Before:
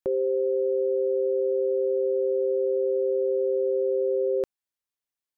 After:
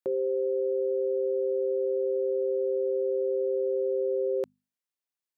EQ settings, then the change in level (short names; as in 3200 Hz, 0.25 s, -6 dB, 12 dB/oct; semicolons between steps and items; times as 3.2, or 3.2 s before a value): HPF 140 Hz; notches 50/100/150/200/250 Hz; -3.0 dB